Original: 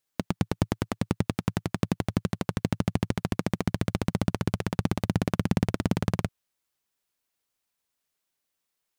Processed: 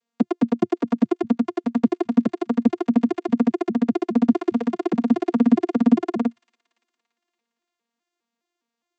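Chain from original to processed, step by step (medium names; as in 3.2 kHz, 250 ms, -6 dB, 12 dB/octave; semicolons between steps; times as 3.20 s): vocoder on a broken chord bare fifth, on A#3, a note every 205 ms; feedback echo behind a high-pass 285 ms, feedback 51%, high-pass 2.8 kHz, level -21 dB; trim +9 dB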